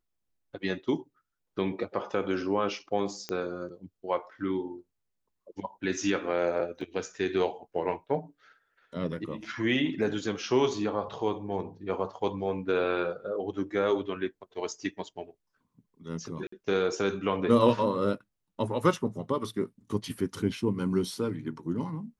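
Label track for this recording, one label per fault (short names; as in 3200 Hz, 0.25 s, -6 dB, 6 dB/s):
3.290000	3.290000	pop -18 dBFS
6.810000	6.810000	gap 2.3 ms
16.470000	16.520000	gap 54 ms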